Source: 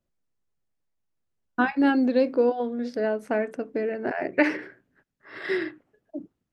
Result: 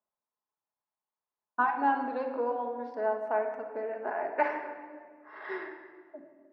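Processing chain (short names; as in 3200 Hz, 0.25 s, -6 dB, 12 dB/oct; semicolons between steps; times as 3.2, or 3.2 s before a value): band-pass 950 Hz, Q 3.9; shoebox room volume 2300 m³, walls mixed, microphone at 1.4 m; gain +4.5 dB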